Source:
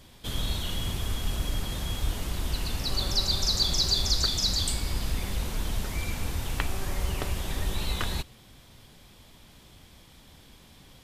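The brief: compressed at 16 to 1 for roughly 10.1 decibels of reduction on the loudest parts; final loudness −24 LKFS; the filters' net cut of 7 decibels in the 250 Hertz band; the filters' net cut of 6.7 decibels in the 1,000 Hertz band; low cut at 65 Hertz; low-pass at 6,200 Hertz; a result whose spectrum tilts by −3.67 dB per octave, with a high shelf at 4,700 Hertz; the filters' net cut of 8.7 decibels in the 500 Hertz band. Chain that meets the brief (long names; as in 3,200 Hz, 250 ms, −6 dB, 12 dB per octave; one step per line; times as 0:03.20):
high-pass filter 65 Hz
low-pass filter 6,200 Hz
parametric band 250 Hz −8.5 dB
parametric band 500 Hz −7 dB
parametric band 1,000 Hz −6.5 dB
high-shelf EQ 4,700 Hz +6.5 dB
downward compressor 16 to 1, threshold −30 dBFS
level +10.5 dB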